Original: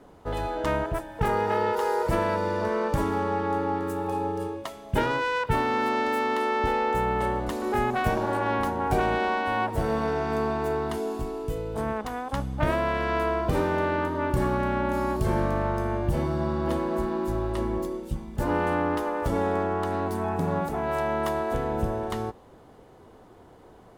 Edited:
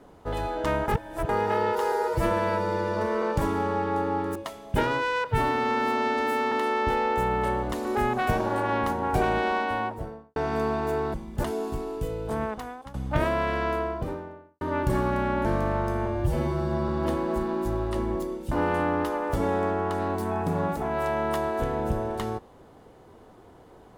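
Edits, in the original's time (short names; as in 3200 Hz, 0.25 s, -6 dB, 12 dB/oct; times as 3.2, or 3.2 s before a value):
0.88–1.29 reverse
1.92–2.79 stretch 1.5×
3.92–4.55 cut
5.44–6.29 stretch 1.5×
9.36–10.13 studio fade out
11.91–12.41 fade out, to -19.5 dB
12.94–14.08 studio fade out
14.92–15.35 cut
15.96–16.51 stretch 1.5×
18.14–18.44 move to 10.91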